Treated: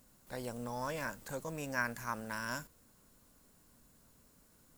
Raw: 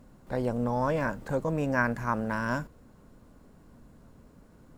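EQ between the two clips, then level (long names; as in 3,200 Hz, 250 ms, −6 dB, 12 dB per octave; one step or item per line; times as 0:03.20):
first-order pre-emphasis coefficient 0.9
+6.0 dB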